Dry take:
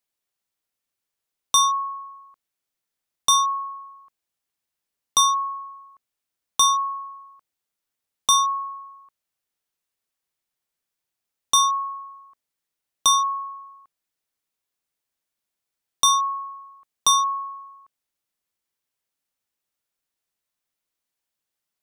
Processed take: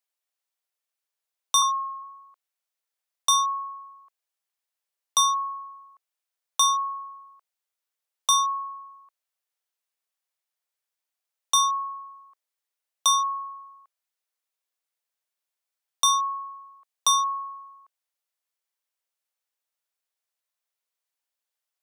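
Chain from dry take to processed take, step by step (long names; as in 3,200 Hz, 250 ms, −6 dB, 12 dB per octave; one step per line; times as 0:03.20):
high-pass filter 470 Hz 24 dB per octave
0:01.62–0:02.02: frequency shifter −16 Hz
level −3 dB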